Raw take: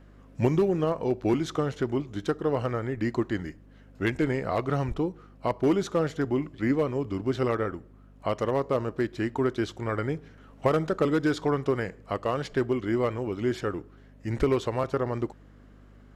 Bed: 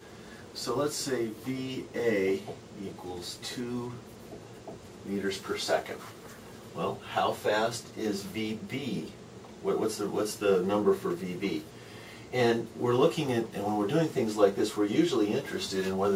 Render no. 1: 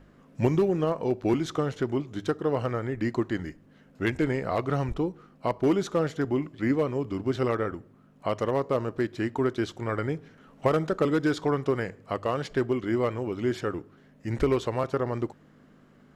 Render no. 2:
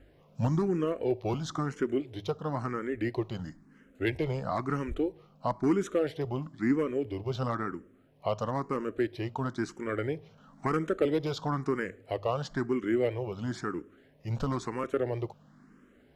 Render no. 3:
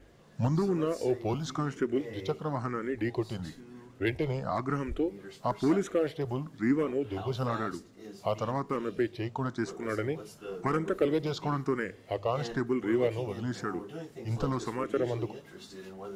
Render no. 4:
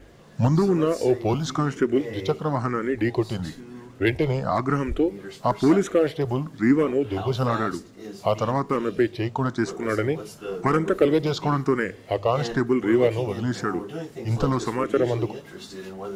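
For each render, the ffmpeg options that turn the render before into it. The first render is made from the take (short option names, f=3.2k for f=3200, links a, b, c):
-af "bandreject=f=50:t=h:w=4,bandreject=f=100:t=h:w=4"
-filter_complex "[0:a]asoftclip=type=tanh:threshold=-11.5dB,asplit=2[a][b];[b]afreqshift=1[c];[a][c]amix=inputs=2:normalize=1"
-filter_complex "[1:a]volume=-15dB[a];[0:a][a]amix=inputs=2:normalize=0"
-af "volume=8dB"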